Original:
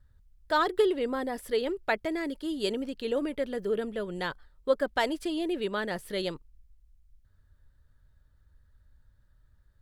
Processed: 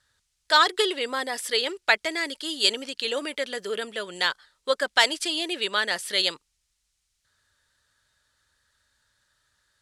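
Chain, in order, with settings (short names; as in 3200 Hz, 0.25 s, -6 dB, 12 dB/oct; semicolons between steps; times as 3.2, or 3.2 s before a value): weighting filter ITU-R 468; gain +5.5 dB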